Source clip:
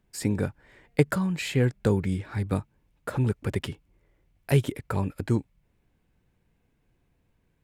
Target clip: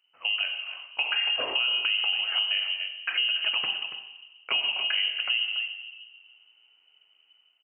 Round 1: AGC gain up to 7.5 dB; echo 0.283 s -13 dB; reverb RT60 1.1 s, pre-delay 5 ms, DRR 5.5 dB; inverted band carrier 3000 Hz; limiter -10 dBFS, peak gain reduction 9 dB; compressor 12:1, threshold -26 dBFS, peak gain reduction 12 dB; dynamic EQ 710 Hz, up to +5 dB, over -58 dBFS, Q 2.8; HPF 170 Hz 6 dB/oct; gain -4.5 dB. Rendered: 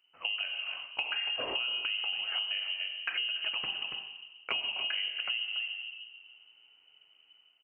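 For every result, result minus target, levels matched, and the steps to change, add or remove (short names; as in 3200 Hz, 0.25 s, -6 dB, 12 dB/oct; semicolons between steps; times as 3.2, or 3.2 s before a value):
compressor: peak gain reduction +8 dB; 125 Hz band +7.5 dB
change: compressor 12:1, threshold -17.5 dBFS, peak gain reduction 4.5 dB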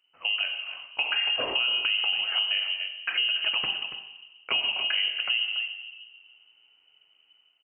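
125 Hz band +6.5 dB
change: HPF 460 Hz 6 dB/oct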